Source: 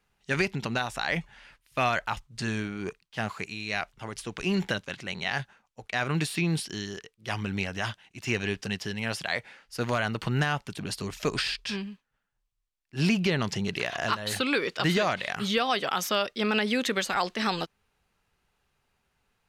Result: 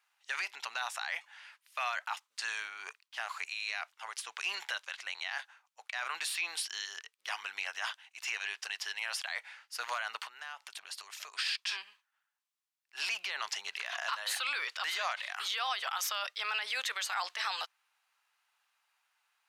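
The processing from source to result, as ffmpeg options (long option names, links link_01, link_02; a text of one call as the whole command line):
ffmpeg -i in.wav -filter_complex "[0:a]asettb=1/sr,asplit=3[link_01][link_02][link_03];[link_01]atrim=end=10.244[link_04];[link_02]atrim=start=10.24:end=11.39,asetpts=PTS-STARTPTS,afade=type=in:duration=0.004:curve=qsin,afade=type=out:start_time=1.146:duration=0.004:curve=qsin,acompressor=threshold=-37dB:ratio=6:attack=3.2:release=140:knee=1:detection=peak[link_05];[link_03]atrim=start=11.386[link_06];[link_04][link_05]acrossfade=duration=0.004:curve1=hsin:curve2=qsin[link_07];[link_07][link_06]acrossfade=duration=0.004:curve1=qsin:curve2=hsin,highpass=frequency=860:width=0.5412,highpass=frequency=860:width=1.3066,alimiter=limit=-24dB:level=0:latency=1:release=28" out.wav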